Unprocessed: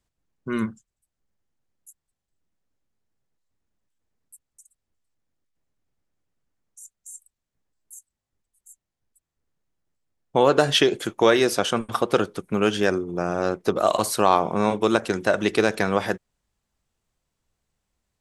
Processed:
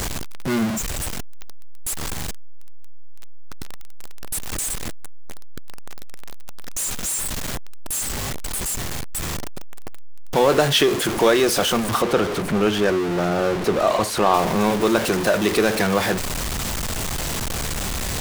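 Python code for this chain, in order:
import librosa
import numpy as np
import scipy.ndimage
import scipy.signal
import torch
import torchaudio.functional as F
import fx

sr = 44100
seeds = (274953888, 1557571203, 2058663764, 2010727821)

y = x + 0.5 * 10.0 ** (-17.5 / 20.0) * np.sign(x)
y = fx.lowpass(y, sr, hz=3700.0, slope=6, at=(12.02, 14.34))
y = F.gain(torch.from_numpy(y), -1.5).numpy()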